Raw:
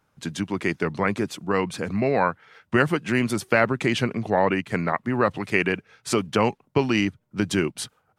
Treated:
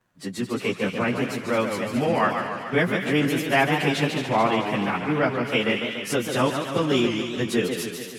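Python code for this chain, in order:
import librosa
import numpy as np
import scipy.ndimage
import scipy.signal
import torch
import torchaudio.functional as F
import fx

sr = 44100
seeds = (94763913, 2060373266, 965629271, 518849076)

y = fx.pitch_bins(x, sr, semitones=3.0)
y = fx.echo_wet_highpass(y, sr, ms=218, feedback_pct=53, hz=1900.0, wet_db=-7.0)
y = fx.echo_warbled(y, sr, ms=144, feedback_pct=62, rate_hz=2.8, cents=185, wet_db=-6.5)
y = y * 10.0 ** (1.5 / 20.0)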